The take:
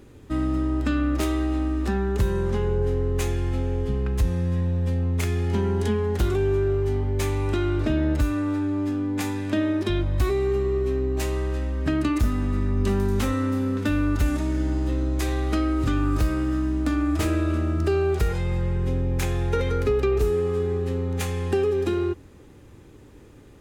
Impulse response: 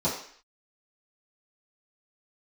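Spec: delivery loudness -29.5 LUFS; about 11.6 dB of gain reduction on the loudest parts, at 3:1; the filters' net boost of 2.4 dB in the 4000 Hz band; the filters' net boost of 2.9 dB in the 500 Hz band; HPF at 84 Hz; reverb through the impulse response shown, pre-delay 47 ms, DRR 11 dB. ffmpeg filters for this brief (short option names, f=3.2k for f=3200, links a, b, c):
-filter_complex "[0:a]highpass=84,equalizer=f=500:t=o:g=4,equalizer=f=4k:t=o:g=3,acompressor=threshold=-33dB:ratio=3,asplit=2[a][b];[1:a]atrim=start_sample=2205,adelay=47[c];[b][c]afir=irnorm=-1:irlink=0,volume=-21.5dB[d];[a][d]amix=inputs=2:normalize=0,volume=2.5dB"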